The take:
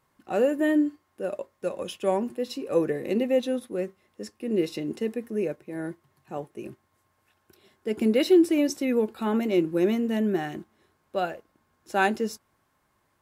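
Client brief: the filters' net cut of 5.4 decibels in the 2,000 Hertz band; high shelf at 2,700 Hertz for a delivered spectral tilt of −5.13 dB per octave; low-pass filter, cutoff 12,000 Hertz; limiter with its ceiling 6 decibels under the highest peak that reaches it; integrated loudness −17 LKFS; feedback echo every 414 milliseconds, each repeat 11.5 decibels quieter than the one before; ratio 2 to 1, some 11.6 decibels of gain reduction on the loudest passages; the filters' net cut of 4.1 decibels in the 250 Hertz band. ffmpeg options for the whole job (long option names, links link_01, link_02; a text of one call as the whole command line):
ffmpeg -i in.wav -af "lowpass=12000,equalizer=frequency=250:width_type=o:gain=-5.5,equalizer=frequency=2000:width_type=o:gain=-5.5,highshelf=frequency=2700:gain=-4,acompressor=threshold=-39dB:ratio=2,alimiter=level_in=4.5dB:limit=-24dB:level=0:latency=1,volume=-4.5dB,aecho=1:1:414|828|1242:0.266|0.0718|0.0194,volume=22.5dB" out.wav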